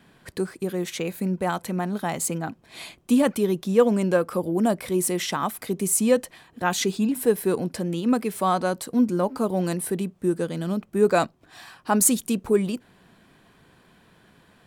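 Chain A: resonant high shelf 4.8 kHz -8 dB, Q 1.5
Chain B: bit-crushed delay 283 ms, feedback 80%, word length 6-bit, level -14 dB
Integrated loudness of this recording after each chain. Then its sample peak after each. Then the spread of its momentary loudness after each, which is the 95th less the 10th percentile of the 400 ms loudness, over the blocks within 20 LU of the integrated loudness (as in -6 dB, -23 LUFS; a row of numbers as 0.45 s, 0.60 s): -24.5 LUFS, -24.0 LUFS; -6.0 dBFS, -4.0 dBFS; 9 LU, 14 LU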